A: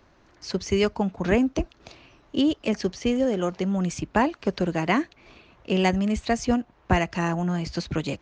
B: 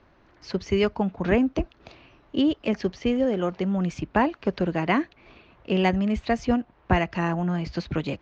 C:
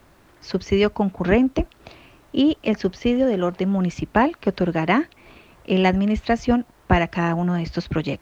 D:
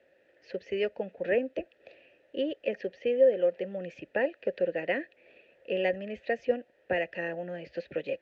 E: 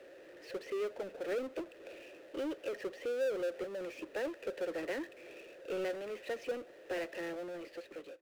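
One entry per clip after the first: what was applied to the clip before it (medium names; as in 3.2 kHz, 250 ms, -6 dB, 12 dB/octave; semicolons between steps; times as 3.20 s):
low-pass 3.6 kHz 12 dB/octave
added noise pink -65 dBFS; trim +4 dB
vowel filter e; trim +1.5 dB
fade out at the end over 1.17 s; ladder high-pass 290 Hz, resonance 55%; power-law waveshaper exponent 0.5; trim -8 dB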